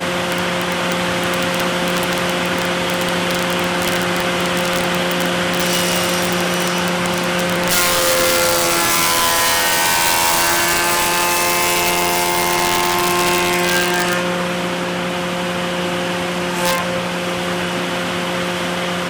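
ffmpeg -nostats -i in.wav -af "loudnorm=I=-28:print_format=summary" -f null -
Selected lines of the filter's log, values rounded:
Input Integrated:    -16.6 LUFS
Input True Peak:      -3.3 dBTP
Input LRA:             5.8 LU
Input Threshold:     -26.6 LUFS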